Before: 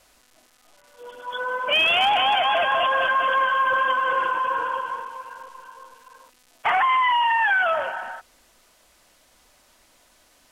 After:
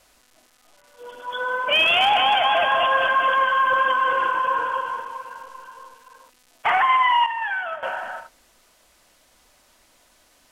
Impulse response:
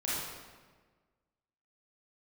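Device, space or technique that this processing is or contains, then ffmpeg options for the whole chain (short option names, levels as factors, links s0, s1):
keyed gated reverb: -filter_complex "[0:a]asplit=3[s0][s1][s2];[1:a]atrim=start_sample=2205[s3];[s1][s3]afir=irnorm=-1:irlink=0[s4];[s2]apad=whole_len=463905[s5];[s4][s5]sidechaingate=range=0.0224:threshold=0.00562:ratio=16:detection=peak,volume=0.188[s6];[s0][s6]amix=inputs=2:normalize=0,asettb=1/sr,asplit=3[s7][s8][s9];[s7]atrim=end=7.264[s10];[s8]atrim=start=7.26:end=7.83,asetpts=PTS-STARTPTS,afade=t=in:d=0.004:c=qsin,afade=t=out:st=0.566:d=0.004:c=qsin,agate=range=0.0224:threshold=0.282:ratio=3:detection=peak[s11];[s9]atrim=start=7.826[s12];[s10][s11]acrossfade=d=0.004:c1=hsin:c2=qsin[s13];[s13][s12]acrossfade=d=0.004:c1=qsin:c2=hsin"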